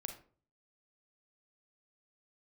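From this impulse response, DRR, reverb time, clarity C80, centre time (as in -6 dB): 5.0 dB, 0.45 s, 14.0 dB, 15 ms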